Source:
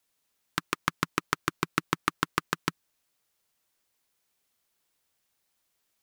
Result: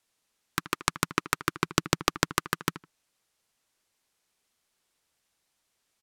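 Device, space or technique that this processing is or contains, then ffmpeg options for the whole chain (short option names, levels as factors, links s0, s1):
overflowing digital effects unit: -filter_complex "[0:a]asettb=1/sr,asplit=3[s0][s1][s2];[s0]atrim=end=1.654[s3];[s1]atrim=start=1.65:end=2.35,asetpts=PTS-STARTPTS,afade=t=in:d=0.004:c=qsin,afade=t=out:st=0.696:d=0.004:c=qsin,lowshelf=f=340:g=5.5[s4];[s2]atrim=start=2.346[s5];[s3][s4]acrossfade=d=0.004:c1=hsin:c2=qsin[s6];[s6][s5]acrossfade=d=0.004:c1=qsin:c2=hsin,asplit=2[s7][s8];[s8]adelay=79,lowpass=f=2500:p=1,volume=0.178,asplit=2[s9][s10];[s10]adelay=79,lowpass=f=2500:p=1,volume=0.21[s11];[s7][s9][s11]amix=inputs=3:normalize=0,aeval=exprs='(mod(1.68*val(0)+1,2)-1)/1.68':c=same,lowpass=11000,volume=1.26"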